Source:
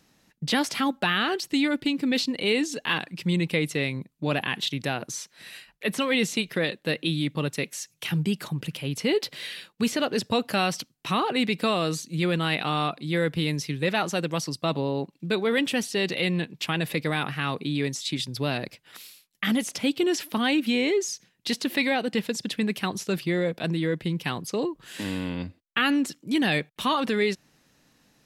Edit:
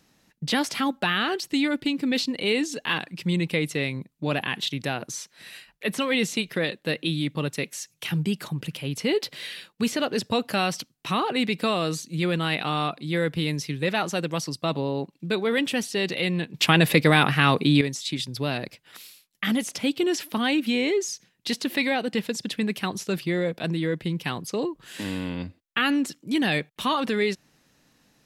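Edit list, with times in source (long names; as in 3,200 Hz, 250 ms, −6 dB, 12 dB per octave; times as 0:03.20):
0:16.54–0:17.81: clip gain +9 dB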